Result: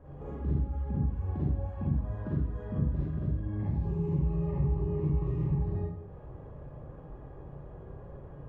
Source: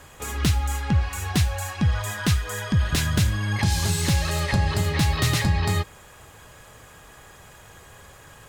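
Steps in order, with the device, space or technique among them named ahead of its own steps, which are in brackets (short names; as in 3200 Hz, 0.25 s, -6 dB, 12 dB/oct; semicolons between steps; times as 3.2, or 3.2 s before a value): 3.83–5.53 ripple EQ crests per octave 0.73, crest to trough 10 dB; television next door (compressor 4:1, threshold -35 dBFS, peak gain reduction 17 dB; LPF 470 Hz 12 dB/oct; reverb RT60 0.75 s, pre-delay 37 ms, DRR -8 dB); gain -3 dB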